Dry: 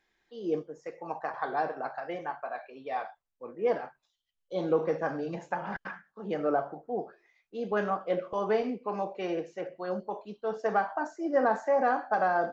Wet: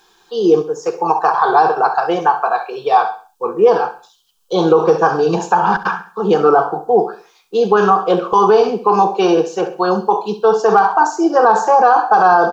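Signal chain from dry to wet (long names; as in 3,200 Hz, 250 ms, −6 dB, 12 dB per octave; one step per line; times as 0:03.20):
low-shelf EQ 290 Hz −12 dB
in parallel at −2 dB: downward compressor, threshold −39 dBFS, peak gain reduction 15 dB
on the sum: phaser with its sweep stopped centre 400 Hz, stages 8
hard clipping −18.5 dBFS, distortion −44 dB
on a send: repeating echo 67 ms, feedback 37%, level −14.5 dB
on the sum: boost into a limiter +24.5 dB
level −1 dB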